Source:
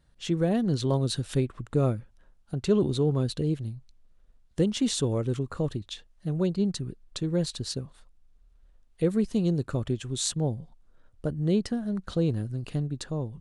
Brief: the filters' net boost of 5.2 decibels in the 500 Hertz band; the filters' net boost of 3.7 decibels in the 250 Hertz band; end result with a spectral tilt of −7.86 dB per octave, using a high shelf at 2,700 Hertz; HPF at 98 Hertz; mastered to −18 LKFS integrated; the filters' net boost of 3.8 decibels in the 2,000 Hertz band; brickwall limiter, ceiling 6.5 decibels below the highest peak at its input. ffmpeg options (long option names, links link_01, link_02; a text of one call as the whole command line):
ffmpeg -i in.wav -af "highpass=98,equalizer=frequency=250:width_type=o:gain=4,equalizer=frequency=500:width_type=o:gain=5,equalizer=frequency=2000:width_type=o:gain=8,highshelf=frequency=2700:gain=-7.5,volume=8.5dB,alimiter=limit=-5.5dB:level=0:latency=1" out.wav